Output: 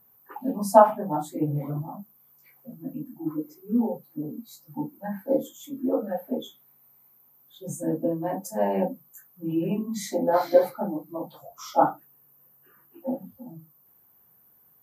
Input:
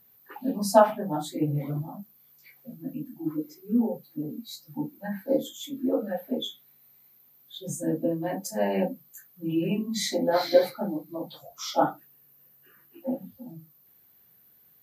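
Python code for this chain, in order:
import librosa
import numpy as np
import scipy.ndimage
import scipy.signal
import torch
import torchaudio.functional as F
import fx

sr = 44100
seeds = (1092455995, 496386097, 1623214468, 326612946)

y = fx.graphic_eq(x, sr, hz=(1000, 2000, 4000), db=(7, -5, -11))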